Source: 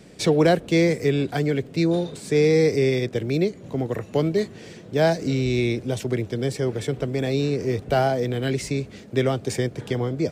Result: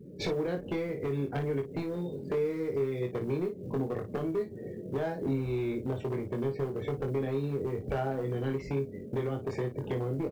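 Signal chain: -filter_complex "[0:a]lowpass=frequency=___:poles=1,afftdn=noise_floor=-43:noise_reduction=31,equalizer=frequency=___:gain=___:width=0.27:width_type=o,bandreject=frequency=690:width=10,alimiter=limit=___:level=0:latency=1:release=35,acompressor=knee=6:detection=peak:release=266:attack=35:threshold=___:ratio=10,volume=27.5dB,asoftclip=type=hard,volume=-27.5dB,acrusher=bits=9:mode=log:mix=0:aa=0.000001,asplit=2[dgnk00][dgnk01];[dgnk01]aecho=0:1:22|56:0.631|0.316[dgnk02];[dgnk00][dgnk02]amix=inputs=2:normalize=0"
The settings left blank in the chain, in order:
1500, 410, 4.5, -11dB, -31dB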